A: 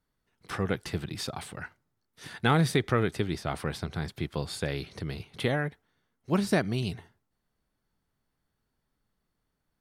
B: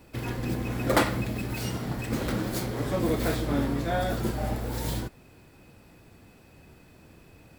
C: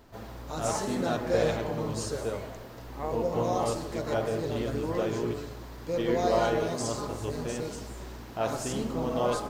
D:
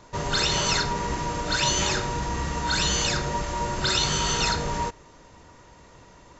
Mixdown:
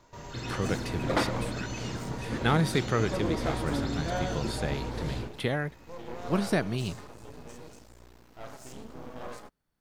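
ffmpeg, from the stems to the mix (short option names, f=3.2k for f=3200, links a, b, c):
-filter_complex "[0:a]volume=-1.5dB[a];[1:a]lowpass=4.9k,adelay=200,volume=-4.5dB[b];[2:a]aeval=exprs='max(val(0),0)':c=same,volume=-9dB[c];[3:a]alimiter=level_in=1.5dB:limit=-24dB:level=0:latency=1,volume=-1.5dB,volume=-10dB[d];[a][b][c][d]amix=inputs=4:normalize=0"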